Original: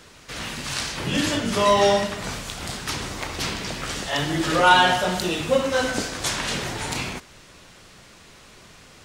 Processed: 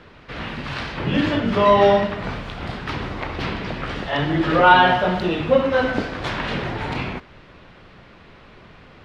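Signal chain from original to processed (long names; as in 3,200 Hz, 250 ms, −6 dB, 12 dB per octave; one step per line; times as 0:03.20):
high-frequency loss of the air 370 metres
level +5 dB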